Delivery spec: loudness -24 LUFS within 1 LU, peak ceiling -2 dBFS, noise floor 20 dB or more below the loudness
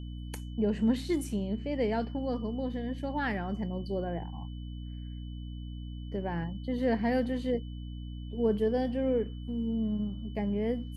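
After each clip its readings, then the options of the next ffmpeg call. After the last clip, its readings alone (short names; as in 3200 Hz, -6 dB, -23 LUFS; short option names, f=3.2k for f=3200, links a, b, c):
hum 60 Hz; harmonics up to 300 Hz; hum level -37 dBFS; steady tone 3000 Hz; tone level -57 dBFS; loudness -33.0 LUFS; peak -16.5 dBFS; loudness target -24.0 LUFS
-> -af "bandreject=f=60:t=h:w=6,bandreject=f=120:t=h:w=6,bandreject=f=180:t=h:w=6,bandreject=f=240:t=h:w=6,bandreject=f=300:t=h:w=6"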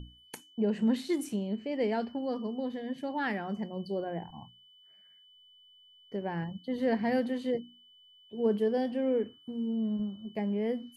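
hum none; steady tone 3000 Hz; tone level -57 dBFS
-> -af "bandreject=f=3k:w=30"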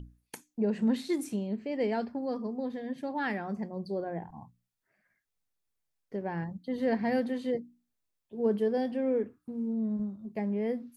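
steady tone none; loudness -32.5 LUFS; peak -17.5 dBFS; loudness target -24.0 LUFS
-> -af "volume=8.5dB"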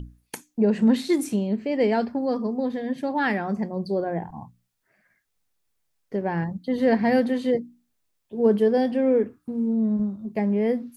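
loudness -24.0 LUFS; peak -9.0 dBFS; noise floor -74 dBFS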